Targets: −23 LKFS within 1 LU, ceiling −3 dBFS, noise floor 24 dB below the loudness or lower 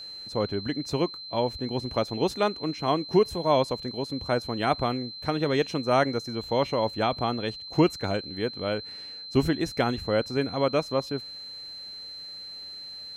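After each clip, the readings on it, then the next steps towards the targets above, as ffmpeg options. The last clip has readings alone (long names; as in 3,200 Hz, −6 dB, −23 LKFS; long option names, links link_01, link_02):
interfering tone 4,100 Hz; level of the tone −38 dBFS; integrated loudness −28.0 LKFS; sample peak −9.5 dBFS; target loudness −23.0 LKFS
→ -af "bandreject=frequency=4100:width=30"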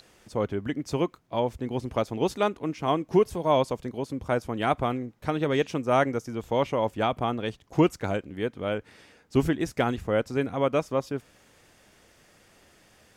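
interfering tone none found; integrated loudness −27.5 LKFS; sample peak −9.5 dBFS; target loudness −23.0 LKFS
→ -af "volume=4.5dB"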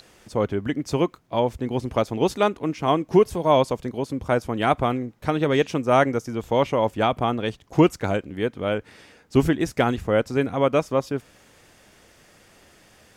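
integrated loudness −23.0 LKFS; sample peak −5.0 dBFS; background noise floor −55 dBFS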